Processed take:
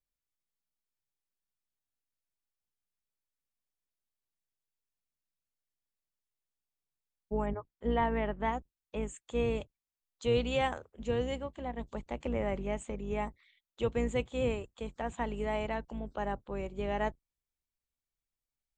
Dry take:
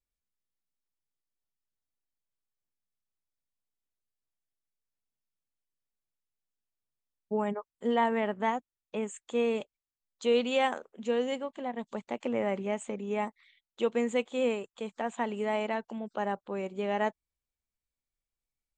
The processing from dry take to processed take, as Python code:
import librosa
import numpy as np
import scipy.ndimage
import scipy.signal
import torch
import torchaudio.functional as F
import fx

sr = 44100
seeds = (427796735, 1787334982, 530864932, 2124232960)

y = fx.octave_divider(x, sr, octaves=2, level_db=0.0)
y = fx.lowpass(y, sr, hz=fx.line((7.45, 2700.0), (8.51, 4400.0)), slope=12, at=(7.45, 8.51), fade=0.02)
y = y * librosa.db_to_amplitude(-3.5)